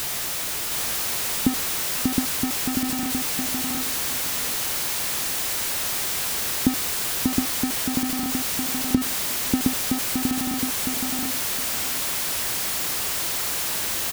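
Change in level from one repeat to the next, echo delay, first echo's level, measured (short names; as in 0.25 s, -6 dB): -15.5 dB, 0.715 s, -3.0 dB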